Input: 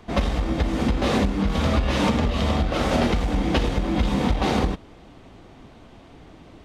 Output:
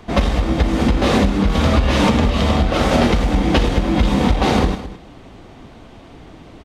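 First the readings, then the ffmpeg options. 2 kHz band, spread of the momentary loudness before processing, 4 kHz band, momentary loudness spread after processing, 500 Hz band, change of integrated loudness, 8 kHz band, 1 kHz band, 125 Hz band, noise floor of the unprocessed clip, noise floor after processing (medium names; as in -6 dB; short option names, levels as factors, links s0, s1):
+6.0 dB, 3 LU, +6.0 dB, 3 LU, +6.0 dB, +6.0 dB, +6.0 dB, +6.0 dB, +6.0 dB, -48 dBFS, -41 dBFS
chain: -af "aecho=1:1:213:0.178,volume=2"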